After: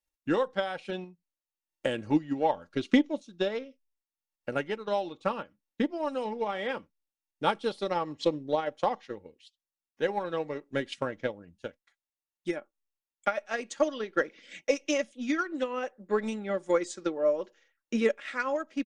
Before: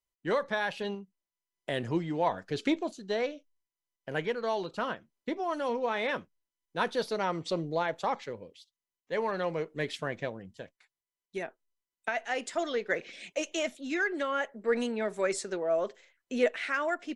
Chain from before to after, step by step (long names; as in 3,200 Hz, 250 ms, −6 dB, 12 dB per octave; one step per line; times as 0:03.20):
comb filter 3.3 ms, depth 40%
transient designer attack +8 dB, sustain −5 dB
dynamic equaliser 1,800 Hz, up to −4 dB, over −40 dBFS, Q 2
speed change −9%
level −2 dB